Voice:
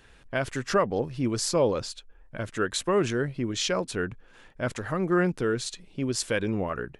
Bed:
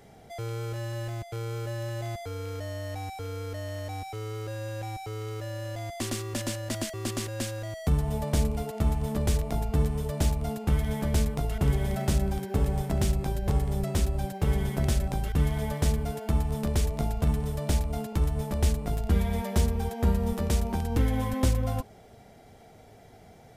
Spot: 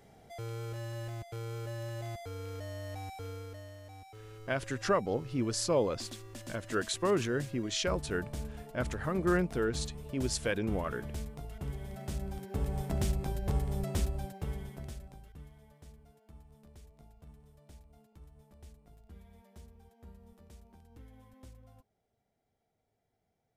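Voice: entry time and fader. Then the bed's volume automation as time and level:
4.15 s, −5.0 dB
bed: 0:03.28 −6 dB
0:03.79 −14.5 dB
0:11.91 −14.5 dB
0:12.89 −5.5 dB
0:14.04 −5.5 dB
0:15.62 −29 dB

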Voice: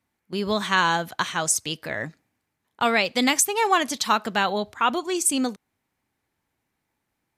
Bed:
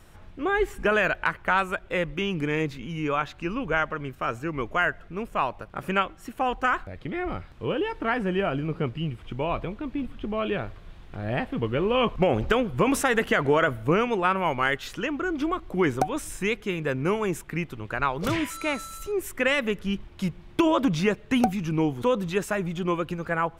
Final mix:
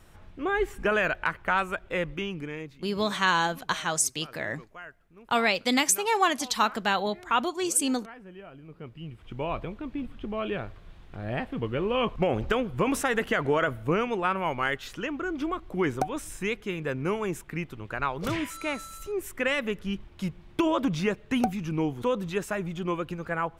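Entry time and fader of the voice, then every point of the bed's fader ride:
2.50 s, −3.0 dB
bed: 0:02.12 −2.5 dB
0:03.03 −20 dB
0:08.56 −20 dB
0:09.41 −3.5 dB

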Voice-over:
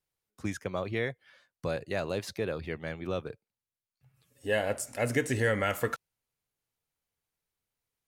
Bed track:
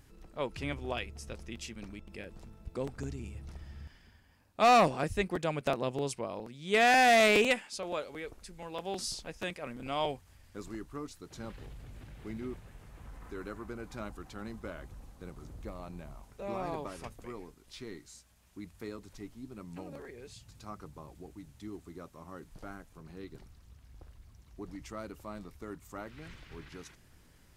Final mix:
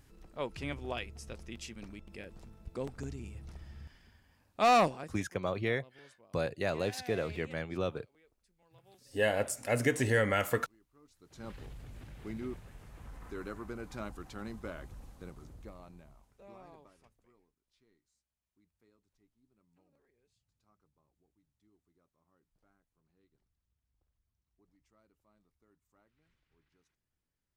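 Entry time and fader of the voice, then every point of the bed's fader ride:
4.70 s, −0.5 dB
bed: 0:04.84 −2 dB
0:05.32 −25.5 dB
0:10.93 −25.5 dB
0:11.50 0 dB
0:15.14 0 dB
0:17.59 −28 dB

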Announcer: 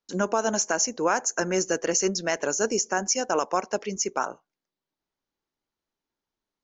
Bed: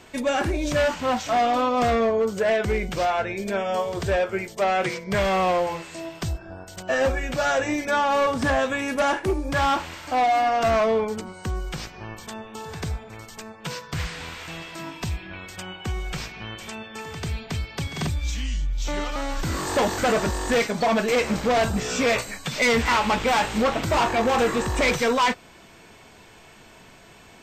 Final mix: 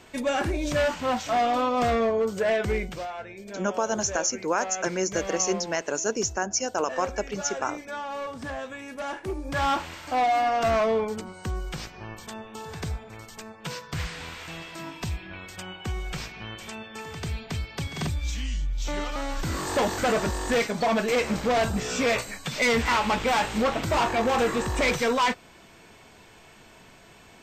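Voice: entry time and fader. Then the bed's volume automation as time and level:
3.45 s, −2.0 dB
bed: 0:02.80 −2.5 dB
0:03.08 −12.5 dB
0:08.97 −12.5 dB
0:09.70 −2.5 dB

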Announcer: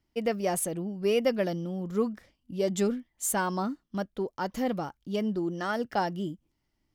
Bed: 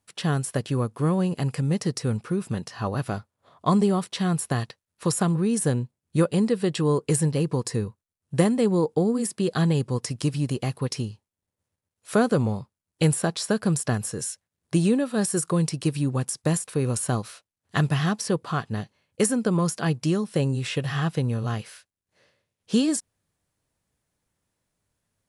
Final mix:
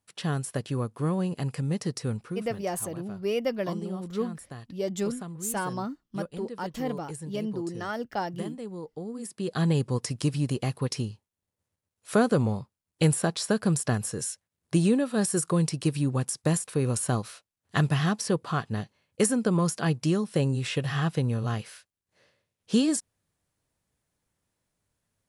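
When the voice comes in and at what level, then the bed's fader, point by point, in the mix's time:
2.20 s, −2.5 dB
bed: 0:02.09 −4.5 dB
0:02.86 −16.5 dB
0:08.95 −16.5 dB
0:09.72 −1.5 dB

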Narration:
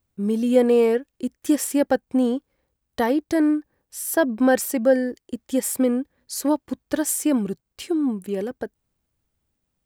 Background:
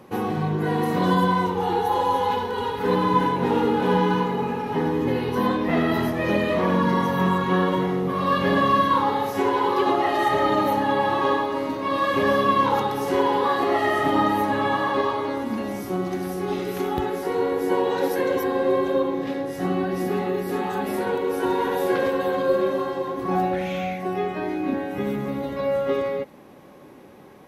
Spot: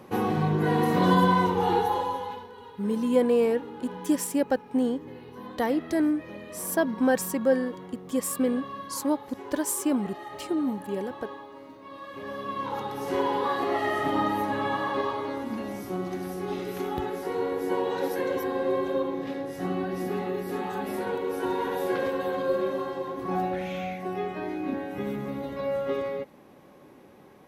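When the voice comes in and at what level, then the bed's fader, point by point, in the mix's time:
2.60 s, −5.0 dB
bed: 0:01.77 −0.5 dB
0:02.58 −19.5 dB
0:12.09 −19.5 dB
0:13.15 −5.5 dB

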